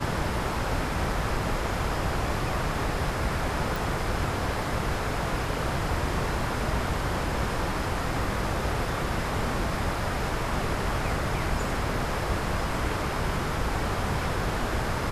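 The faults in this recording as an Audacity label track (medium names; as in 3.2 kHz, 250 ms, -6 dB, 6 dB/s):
3.760000	3.760000	pop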